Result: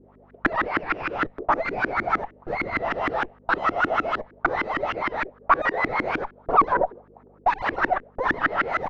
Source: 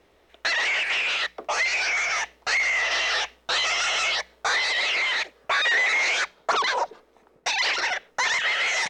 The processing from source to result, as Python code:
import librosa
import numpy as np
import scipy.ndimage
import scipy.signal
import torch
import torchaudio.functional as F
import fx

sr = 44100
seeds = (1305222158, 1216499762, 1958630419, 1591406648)

y = fx.dmg_buzz(x, sr, base_hz=50.0, harmonics=5, level_db=-58.0, tilt_db=-1, odd_only=False)
y = fx.cheby_harmonics(y, sr, harmonics=(6,), levels_db=(-14,), full_scale_db=-11.5)
y = fx.filter_lfo_lowpass(y, sr, shape='saw_up', hz=6.5, low_hz=290.0, high_hz=1600.0, q=4.4)